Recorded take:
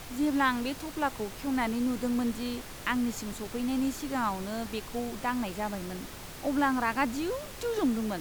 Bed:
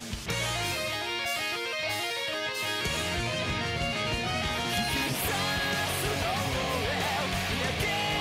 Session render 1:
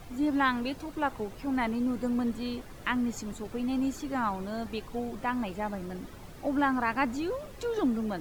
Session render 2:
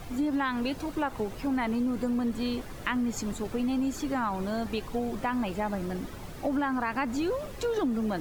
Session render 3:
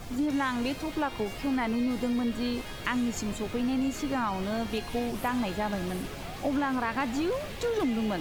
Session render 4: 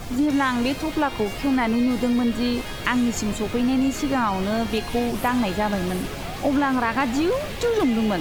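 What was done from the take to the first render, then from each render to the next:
denoiser 11 dB, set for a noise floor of -44 dBFS
in parallel at -2 dB: limiter -24.5 dBFS, peak gain reduction 10 dB; on the sum: compressor, threshold -25 dBFS, peak gain reduction 6.5 dB
add bed -13.5 dB
gain +7.5 dB

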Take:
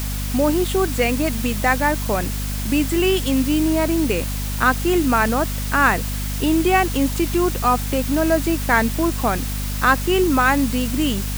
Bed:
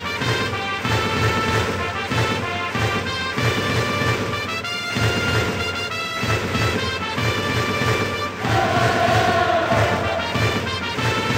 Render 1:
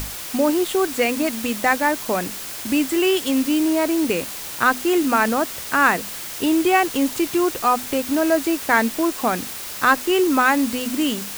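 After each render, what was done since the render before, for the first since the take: notches 50/100/150/200/250 Hz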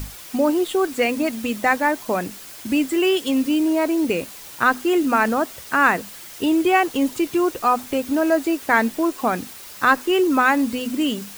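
denoiser 8 dB, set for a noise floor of -32 dBFS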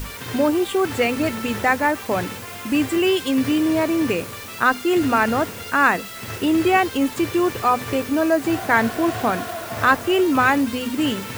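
add bed -12 dB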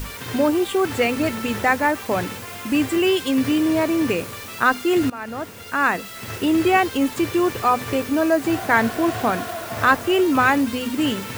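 5.1–6.66 fade in equal-power, from -19.5 dB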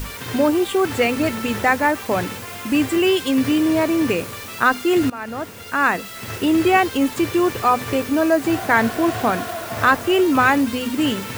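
gain +1.5 dB; limiter -3 dBFS, peak gain reduction 1.5 dB

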